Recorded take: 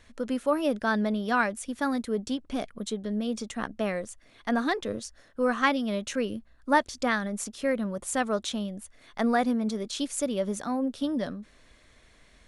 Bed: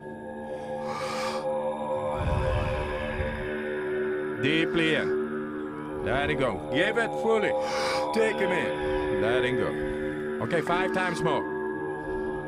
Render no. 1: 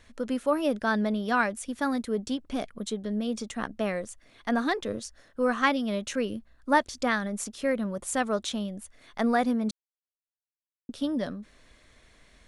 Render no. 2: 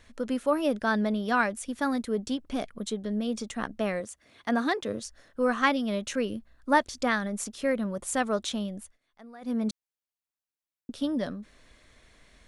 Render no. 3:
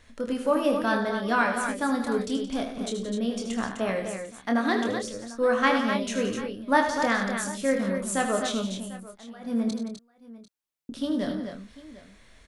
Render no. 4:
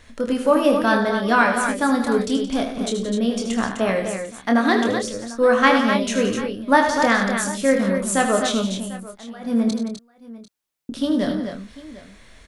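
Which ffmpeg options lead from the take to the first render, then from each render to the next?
-filter_complex "[0:a]asplit=3[s0][s1][s2];[s0]atrim=end=9.71,asetpts=PTS-STARTPTS,afade=t=out:st=9.706:d=0.004:c=hsin[s3];[s1]atrim=start=9.71:end=10.89,asetpts=PTS-STARTPTS,volume=0[s4];[s2]atrim=start=10.89,asetpts=PTS-STARTPTS,afade=t=in:d=0.004:c=hsin[s5];[s3][s4][s5]concat=n=3:v=0:a=1"
-filter_complex "[0:a]asettb=1/sr,asplit=3[s0][s1][s2];[s0]atrim=end=4.004[s3];[s1]atrim=start=4:end=5.02,asetpts=PTS-STARTPTS,afade=t=in:d=0.004:c=qsin,afade=t=out:st=1.016:d=0.004:c=qsin,highpass=80[s4];[s2]atrim=start=5.016[s5];[s3][s4]acrossfade=d=0.004:c1=hsin:c2=qsin[s6];[s6][s5]acrossfade=d=0.004:c1=qsin:c2=hsin,asplit=3[s7][s8][s9];[s7]atrim=end=8.98,asetpts=PTS-STARTPTS,afade=t=out:st=8.81:d=0.17:silence=0.0707946[s10];[s8]atrim=start=8.98:end=9.41,asetpts=PTS-STARTPTS,volume=0.0708[s11];[s9]atrim=start=9.41,asetpts=PTS-STARTPTS,afade=t=in:d=0.17:silence=0.0707946[s12];[s10][s11][s12]concat=n=3:v=0:a=1"
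-filter_complex "[0:a]asplit=2[s0][s1];[s1]adelay=26,volume=0.501[s2];[s0][s2]amix=inputs=2:normalize=0,aecho=1:1:78|96|173|254|746:0.355|0.224|0.237|0.447|0.119"
-af "volume=2.24,alimiter=limit=0.708:level=0:latency=1"

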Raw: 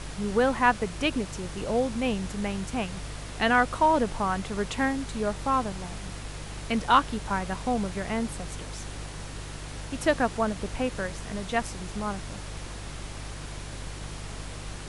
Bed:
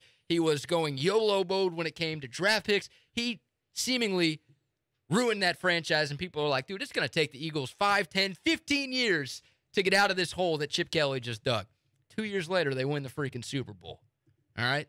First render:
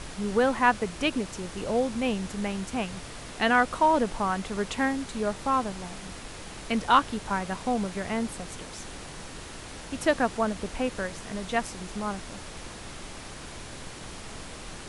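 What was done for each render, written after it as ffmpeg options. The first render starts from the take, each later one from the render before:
-af "bandreject=f=50:t=h:w=4,bandreject=f=100:t=h:w=4,bandreject=f=150:t=h:w=4"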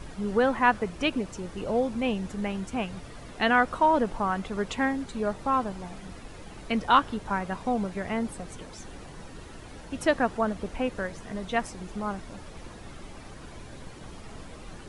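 -af "afftdn=nr=10:nf=-42"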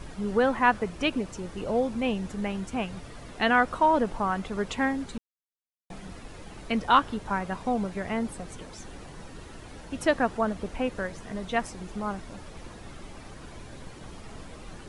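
-filter_complex "[0:a]asplit=3[s0][s1][s2];[s0]atrim=end=5.18,asetpts=PTS-STARTPTS,afade=t=out:st=5.176:d=0.004:c=hsin[s3];[s1]atrim=start=5.18:end=5.9,asetpts=PTS-STARTPTS,volume=0[s4];[s2]atrim=start=5.9,asetpts=PTS-STARTPTS,afade=t=in:d=0.004:c=hsin[s5];[s3][s4][s5]concat=n=3:v=0:a=1"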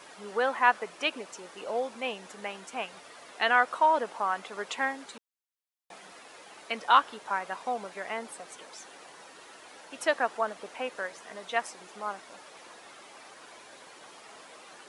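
-af "highpass=600"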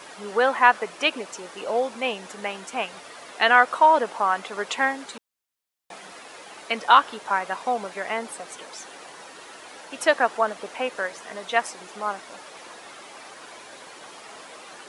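-af "volume=2.24,alimiter=limit=0.708:level=0:latency=1"

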